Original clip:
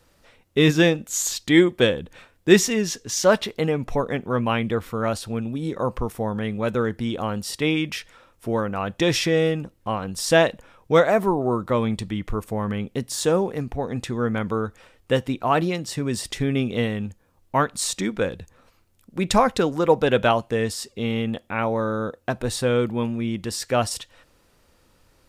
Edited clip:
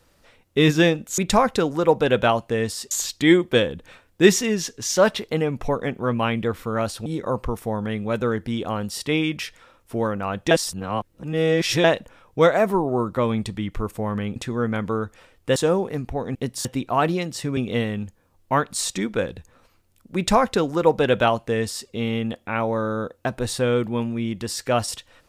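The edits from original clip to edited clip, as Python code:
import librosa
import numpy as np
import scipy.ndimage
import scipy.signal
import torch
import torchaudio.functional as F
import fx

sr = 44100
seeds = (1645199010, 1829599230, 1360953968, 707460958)

y = fx.edit(x, sr, fx.cut(start_s=5.33, length_s=0.26),
    fx.reverse_span(start_s=9.04, length_s=1.33),
    fx.swap(start_s=12.89, length_s=0.3, other_s=13.98, other_length_s=1.2),
    fx.cut(start_s=16.1, length_s=0.5),
    fx.duplicate(start_s=19.19, length_s=1.73, to_s=1.18), tone=tone)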